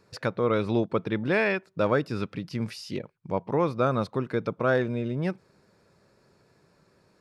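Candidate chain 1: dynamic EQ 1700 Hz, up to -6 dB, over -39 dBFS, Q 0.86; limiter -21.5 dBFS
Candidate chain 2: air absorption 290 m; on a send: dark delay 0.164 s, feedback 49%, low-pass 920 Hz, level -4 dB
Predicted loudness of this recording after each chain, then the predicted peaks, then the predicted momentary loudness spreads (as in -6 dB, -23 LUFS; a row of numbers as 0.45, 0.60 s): -33.0, -27.0 LUFS; -21.5, -10.5 dBFS; 6, 9 LU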